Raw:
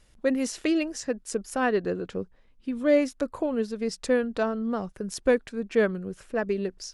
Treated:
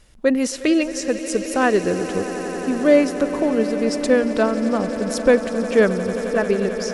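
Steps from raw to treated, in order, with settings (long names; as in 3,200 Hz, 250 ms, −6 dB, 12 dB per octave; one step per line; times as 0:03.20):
echo that builds up and dies away 89 ms, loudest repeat 8, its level −17 dB
level +7 dB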